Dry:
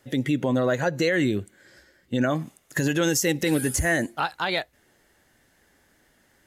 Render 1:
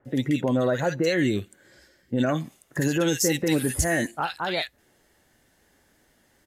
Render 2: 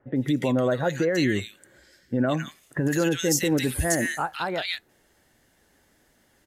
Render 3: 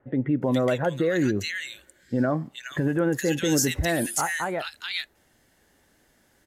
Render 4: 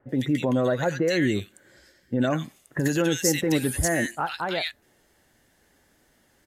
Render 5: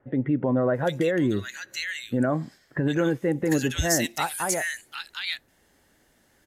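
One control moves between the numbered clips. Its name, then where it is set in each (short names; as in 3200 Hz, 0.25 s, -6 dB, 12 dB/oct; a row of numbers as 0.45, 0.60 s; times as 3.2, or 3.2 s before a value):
bands offset in time, time: 50, 160, 420, 90, 750 ms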